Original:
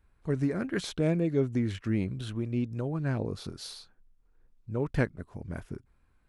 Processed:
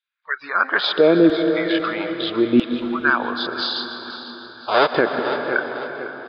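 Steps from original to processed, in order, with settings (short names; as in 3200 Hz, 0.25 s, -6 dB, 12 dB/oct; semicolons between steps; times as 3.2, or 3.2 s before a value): 3.75–4.88 half-waves squared off; rippled Chebyshev low-pass 5000 Hz, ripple 9 dB; in parallel at -1 dB: compressor, threshold -46 dBFS, peak gain reduction 16.5 dB; on the sum: LFO high-pass saw down 0.77 Hz 270–3200 Hz; spectral noise reduction 26 dB; on a send: feedback echo 0.503 s, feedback 39%, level -14 dB; on the sum: plate-style reverb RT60 4.8 s, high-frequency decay 0.65×, pre-delay 0.115 s, DRR 8.5 dB; maximiser +23.5 dB; gain -4 dB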